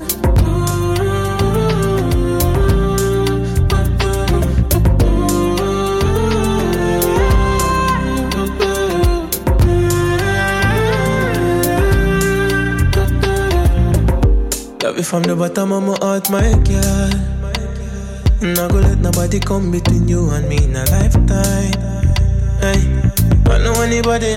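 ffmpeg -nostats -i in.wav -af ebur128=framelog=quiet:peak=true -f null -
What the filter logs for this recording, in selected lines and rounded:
Integrated loudness:
  I:         -15.2 LUFS
  Threshold: -25.2 LUFS
Loudness range:
  LRA:         1.6 LU
  Threshold: -35.3 LUFS
  LRA low:   -16.2 LUFS
  LRA high:  -14.6 LUFS
True peak:
  Peak:       -3.2 dBFS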